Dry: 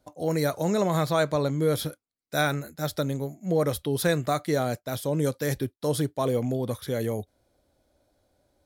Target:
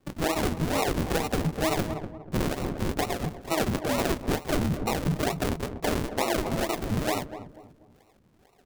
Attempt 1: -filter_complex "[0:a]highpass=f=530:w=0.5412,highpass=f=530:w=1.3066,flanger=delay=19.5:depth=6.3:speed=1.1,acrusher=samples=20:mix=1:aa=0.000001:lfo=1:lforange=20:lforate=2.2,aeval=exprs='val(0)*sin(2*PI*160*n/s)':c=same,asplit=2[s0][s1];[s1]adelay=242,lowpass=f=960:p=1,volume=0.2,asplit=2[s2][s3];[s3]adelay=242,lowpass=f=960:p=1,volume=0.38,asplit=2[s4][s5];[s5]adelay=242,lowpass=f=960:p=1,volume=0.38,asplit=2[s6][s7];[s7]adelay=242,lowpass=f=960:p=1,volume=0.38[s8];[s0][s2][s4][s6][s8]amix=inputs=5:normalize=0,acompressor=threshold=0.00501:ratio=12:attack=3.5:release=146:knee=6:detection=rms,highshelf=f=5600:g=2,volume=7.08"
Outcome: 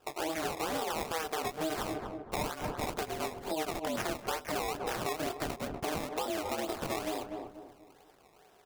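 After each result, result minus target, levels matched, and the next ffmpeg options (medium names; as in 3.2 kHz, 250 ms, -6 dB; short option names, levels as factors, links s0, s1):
decimation with a swept rate: distortion -21 dB; compression: peak gain reduction +8.5 dB
-filter_complex "[0:a]highpass=f=530:w=0.5412,highpass=f=530:w=1.3066,flanger=delay=19.5:depth=6.3:speed=1.1,acrusher=samples=53:mix=1:aa=0.000001:lfo=1:lforange=53:lforate=2.2,aeval=exprs='val(0)*sin(2*PI*160*n/s)':c=same,asplit=2[s0][s1];[s1]adelay=242,lowpass=f=960:p=1,volume=0.2,asplit=2[s2][s3];[s3]adelay=242,lowpass=f=960:p=1,volume=0.38,asplit=2[s4][s5];[s5]adelay=242,lowpass=f=960:p=1,volume=0.38,asplit=2[s6][s7];[s7]adelay=242,lowpass=f=960:p=1,volume=0.38[s8];[s0][s2][s4][s6][s8]amix=inputs=5:normalize=0,acompressor=threshold=0.00501:ratio=12:attack=3.5:release=146:knee=6:detection=rms,highshelf=f=5600:g=2,volume=7.08"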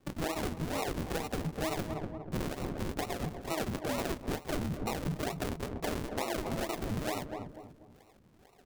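compression: peak gain reduction +8 dB
-filter_complex "[0:a]highpass=f=530:w=0.5412,highpass=f=530:w=1.3066,flanger=delay=19.5:depth=6.3:speed=1.1,acrusher=samples=53:mix=1:aa=0.000001:lfo=1:lforange=53:lforate=2.2,aeval=exprs='val(0)*sin(2*PI*160*n/s)':c=same,asplit=2[s0][s1];[s1]adelay=242,lowpass=f=960:p=1,volume=0.2,asplit=2[s2][s3];[s3]adelay=242,lowpass=f=960:p=1,volume=0.38,asplit=2[s4][s5];[s5]adelay=242,lowpass=f=960:p=1,volume=0.38,asplit=2[s6][s7];[s7]adelay=242,lowpass=f=960:p=1,volume=0.38[s8];[s0][s2][s4][s6][s8]amix=inputs=5:normalize=0,acompressor=threshold=0.0141:ratio=12:attack=3.5:release=146:knee=6:detection=rms,highshelf=f=5600:g=2,volume=7.08"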